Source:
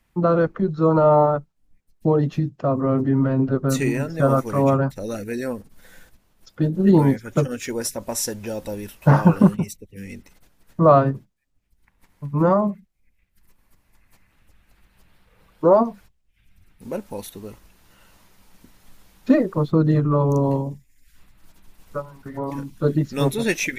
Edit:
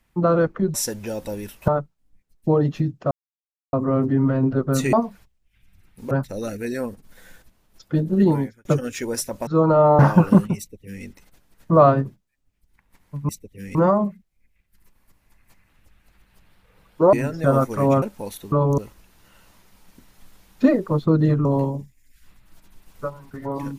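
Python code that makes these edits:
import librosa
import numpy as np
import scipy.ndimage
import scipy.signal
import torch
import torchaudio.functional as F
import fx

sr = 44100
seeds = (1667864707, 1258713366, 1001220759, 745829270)

y = fx.edit(x, sr, fx.swap(start_s=0.74, length_s=0.52, other_s=8.14, other_length_s=0.94),
    fx.insert_silence(at_s=2.69, length_s=0.62),
    fx.swap(start_s=3.89, length_s=0.89, other_s=15.76, other_length_s=1.18),
    fx.fade_out_span(start_s=6.8, length_s=0.52),
    fx.duplicate(start_s=9.67, length_s=0.46, to_s=12.38),
    fx.move(start_s=20.11, length_s=0.26, to_s=17.44), tone=tone)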